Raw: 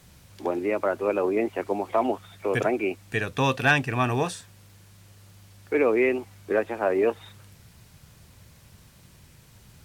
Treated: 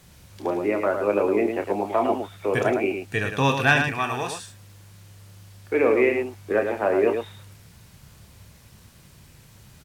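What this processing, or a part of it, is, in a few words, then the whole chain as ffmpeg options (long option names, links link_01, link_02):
slapback doubling: -filter_complex "[0:a]asettb=1/sr,asplit=3[link_01][link_02][link_03];[link_01]atrim=end=3.884[link_04];[link_02]atrim=start=3.88:end=4.37,asetpts=PTS-STARTPTS,afade=type=in:duration=0.004:curve=qsin,afade=type=out:start_time=0.486:duration=0.004:curve=qsin,equalizer=frequency=190:width=0.44:gain=-11[link_05];[link_03]atrim=start=4.366[link_06];[link_04][link_05]acrossfade=duration=0.004:curve1=hsin:curve2=qsin[link_07];[link_07][link_06]acrossfade=duration=0.004:curve1=qsin:curve2=hsin,asplit=3[link_08][link_09][link_10];[link_09]adelay=29,volume=-8.5dB[link_11];[link_10]adelay=108,volume=-6dB[link_12];[link_08][link_11][link_12]amix=inputs=3:normalize=0,volume=1dB"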